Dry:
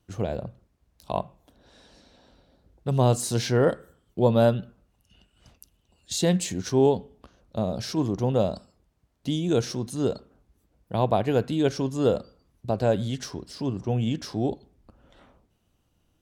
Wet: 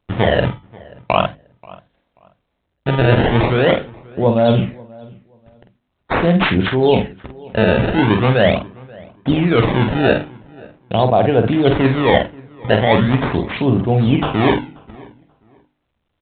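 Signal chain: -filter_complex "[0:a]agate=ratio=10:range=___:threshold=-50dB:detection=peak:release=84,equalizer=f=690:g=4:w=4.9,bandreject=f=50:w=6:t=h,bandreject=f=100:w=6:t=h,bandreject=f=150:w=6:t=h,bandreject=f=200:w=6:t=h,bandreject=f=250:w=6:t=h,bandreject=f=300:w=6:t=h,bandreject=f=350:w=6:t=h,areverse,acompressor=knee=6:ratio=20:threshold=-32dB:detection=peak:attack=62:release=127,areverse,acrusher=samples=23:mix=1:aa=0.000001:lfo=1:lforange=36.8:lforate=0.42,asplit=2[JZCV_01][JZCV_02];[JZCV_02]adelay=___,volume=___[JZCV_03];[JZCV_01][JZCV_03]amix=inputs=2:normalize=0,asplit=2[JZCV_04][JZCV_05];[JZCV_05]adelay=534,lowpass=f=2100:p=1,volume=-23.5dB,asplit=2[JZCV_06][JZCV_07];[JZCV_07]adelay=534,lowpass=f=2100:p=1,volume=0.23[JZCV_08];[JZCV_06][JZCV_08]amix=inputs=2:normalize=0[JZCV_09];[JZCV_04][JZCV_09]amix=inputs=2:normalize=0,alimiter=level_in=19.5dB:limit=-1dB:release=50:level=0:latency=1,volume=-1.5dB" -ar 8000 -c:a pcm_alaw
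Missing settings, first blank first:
-35dB, 47, -7dB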